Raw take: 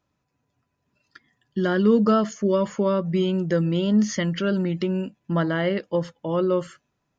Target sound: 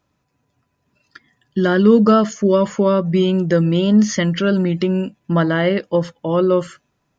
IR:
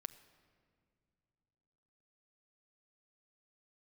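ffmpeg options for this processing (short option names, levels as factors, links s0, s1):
-af "volume=2.11"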